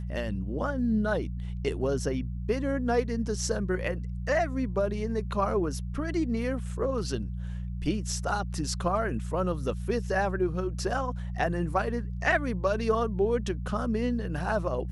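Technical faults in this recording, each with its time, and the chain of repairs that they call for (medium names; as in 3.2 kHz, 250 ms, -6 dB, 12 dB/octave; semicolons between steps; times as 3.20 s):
hum 60 Hz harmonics 3 -34 dBFS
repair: de-hum 60 Hz, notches 3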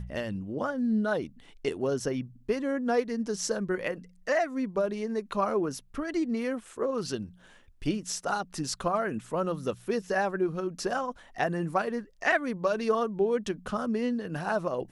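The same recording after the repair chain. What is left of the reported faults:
nothing left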